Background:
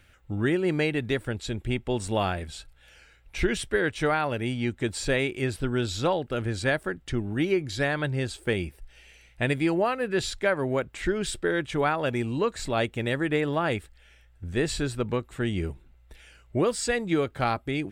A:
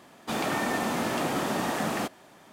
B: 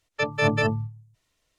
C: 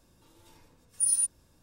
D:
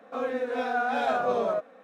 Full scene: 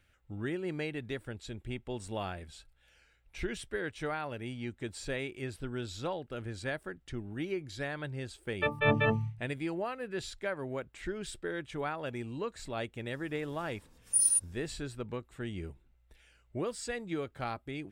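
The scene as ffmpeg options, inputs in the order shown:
-filter_complex "[0:a]volume=-11dB[a];[2:a]aresample=8000,aresample=44100,atrim=end=1.58,asetpts=PTS-STARTPTS,volume=-4.5dB,afade=t=in:d=0.004:c=hsin,afade=t=out:st=1.576:d=0.004:c=hsin,adelay=8430[b];[3:a]atrim=end=1.62,asetpts=PTS-STARTPTS,volume=-0.5dB,afade=t=in:d=0.004:c=hsin,afade=t=out:st=1.616:d=0.004:c=hsin,adelay=13130[c];[a][b][c]amix=inputs=3:normalize=0"

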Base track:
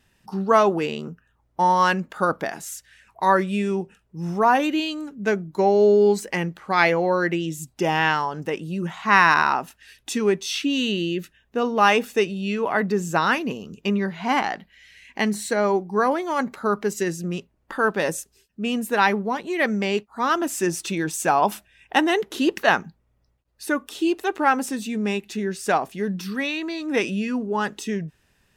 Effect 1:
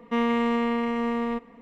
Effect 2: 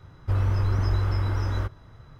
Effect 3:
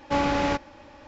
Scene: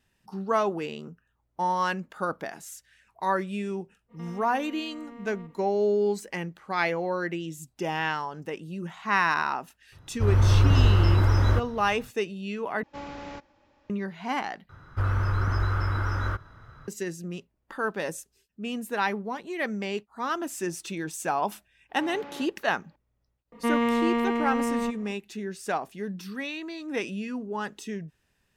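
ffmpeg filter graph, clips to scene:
-filter_complex "[1:a]asplit=2[a][b];[2:a]asplit=2[c][d];[3:a]asplit=2[e][f];[0:a]volume=-8dB[g];[a]acompressor=threshold=-35dB:ratio=5:attack=1.8:release=46:knee=1:detection=peak[h];[c]dynaudnorm=f=150:g=5:m=11dB[i];[d]equalizer=f=1.4k:t=o:w=0.74:g=11.5[j];[f]highpass=170,lowpass=3.5k[k];[g]asplit=3[l][m][n];[l]atrim=end=12.834[o];[e]atrim=end=1.07,asetpts=PTS-STARTPTS,volume=-15.5dB[p];[m]atrim=start=13.896:end=14.694[q];[j]atrim=end=2.19,asetpts=PTS-STARTPTS,volume=-2.5dB[r];[n]atrim=start=16.876[s];[h]atrim=end=1.61,asetpts=PTS-STARTPTS,volume=-8dB,afade=t=in:d=0.05,afade=t=out:st=1.56:d=0.05,adelay=4080[t];[i]atrim=end=2.19,asetpts=PTS-STARTPTS,volume=-5dB,afade=t=in:d=0.004:c=hsin,afade=t=out:st=2.186:d=0.004:c=hsin,adelay=9920[u];[k]atrim=end=1.07,asetpts=PTS-STARTPTS,volume=-17.5dB,afade=t=in:d=0.004:c=hsin,afade=t=out:st=1.066:d=0.004:c=hsin,adelay=21890[v];[b]atrim=end=1.61,asetpts=PTS-STARTPTS,volume=-0.5dB,afade=t=in:d=0.004:c=hsin,afade=t=out:st=1.606:d=0.004:c=hsin,adelay=23520[w];[o][p]acrossfade=d=0.004:c1=hsin:c2=hsin[x];[x][q]acrossfade=d=0.004:c1=hsin:c2=hsin[y];[y][r]acrossfade=d=0.004:c1=hsin:c2=hsin[z];[z][s]acrossfade=d=0.004:c1=hsin:c2=hsin[aa];[aa][t][u][v][w]amix=inputs=5:normalize=0"

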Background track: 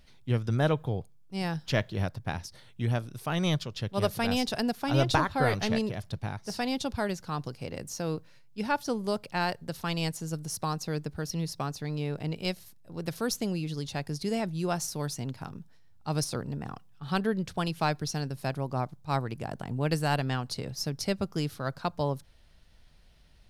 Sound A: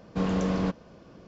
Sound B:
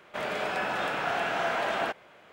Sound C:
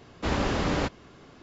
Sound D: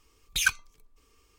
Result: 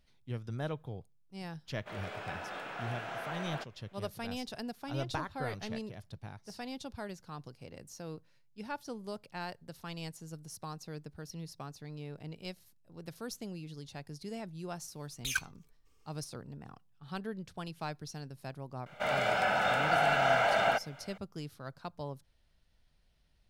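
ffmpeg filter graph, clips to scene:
-filter_complex "[2:a]asplit=2[a][b];[0:a]volume=-11.5dB[c];[b]aecho=1:1:1.4:0.63[d];[a]atrim=end=2.32,asetpts=PTS-STARTPTS,volume=-12dB,afade=t=in:d=0.004:c=hsin,afade=t=out:st=2.316:d=0.004:c=hsin,adelay=1720[e];[4:a]atrim=end=1.38,asetpts=PTS-STARTPTS,volume=-9dB,afade=t=in:d=0.004:c=hsin,afade=t=out:st=1.376:d=0.004:c=hsin,adelay=14890[f];[d]atrim=end=2.32,asetpts=PTS-STARTPTS,volume=-1dB,afade=t=in:d=0.004:c=hsin,afade=t=out:st=2.316:d=0.004:c=hsin,adelay=18860[g];[c][e][f][g]amix=inputs=4:normalize=0"

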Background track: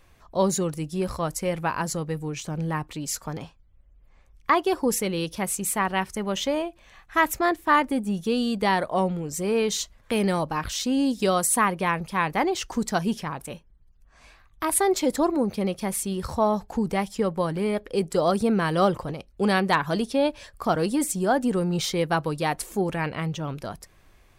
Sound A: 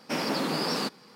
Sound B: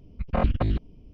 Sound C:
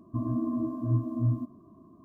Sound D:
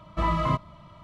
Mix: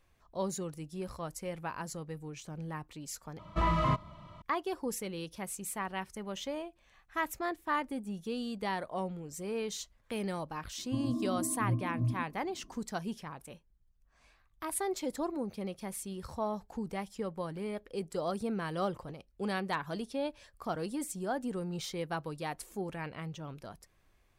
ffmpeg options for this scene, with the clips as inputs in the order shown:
-filter_complex "[0:a]volume=-12.5dB[a];[4:a]asoftclip=type=tanh:threshold=-18dB[b];[3:a]lowpass=1.1k[c];[a]asplit=2[d][e];[d]atrim=end=3.394[f];[b]atrim=end=1.03,asetpts=PTS-STARTPTS,volume=-2dB[g];[e]atrim=start=4.416[h];[c]atrim=end=2.04,asetpts=PTS-STARTPTS,volume=-5.5dB,afade=t=in:d=0.004:c=hsin,afade=t=out:st=2.036:d=0.004:c=hsin,adelay=10780[i];[f][g]acrossfade=d=0.004:c1=hsin:c2=hsin[j];[j][h]acrossfade=d=0.004:c1=hsin:c2=hsin[k];[k][i]amix=inputs=2:normalize=0"

